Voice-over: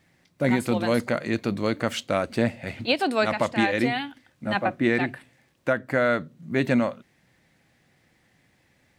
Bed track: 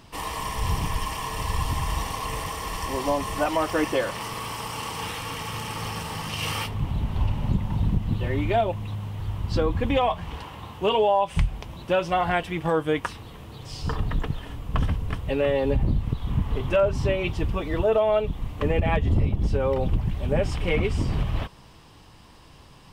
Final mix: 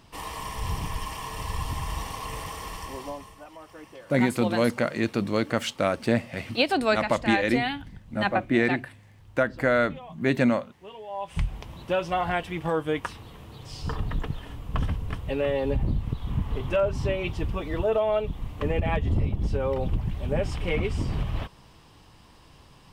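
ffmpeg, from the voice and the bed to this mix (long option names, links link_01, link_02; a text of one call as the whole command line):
ffmpeg -i stem1.wav -i stem2.wav -filter_complex "[0:a]adelay=3700,volume=0dB[link_01];[1:a]volume=14dB,afade=type=out:start_time=2.61:duration=0.76:silence=0.141254,afade=type=in:start_time=11.06:duration=0.43:silence=0.11885[link_02];[link_01][link_02]amix=inputs=2:normalize=0" out.wav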